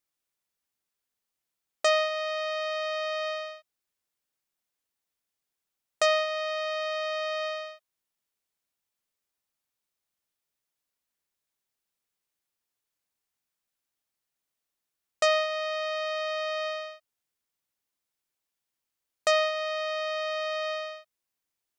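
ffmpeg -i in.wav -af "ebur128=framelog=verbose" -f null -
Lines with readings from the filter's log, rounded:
Integrated loudness:
  I:         -28.8 LUFS
  Threshold: -39.3 LUFS
Loudness range:
  LRA:         5.9 LU
  Threshold: -52.2 LUFS
  LRA low:   -36.7 LUFS
  LRA high:  -30.8 LUFS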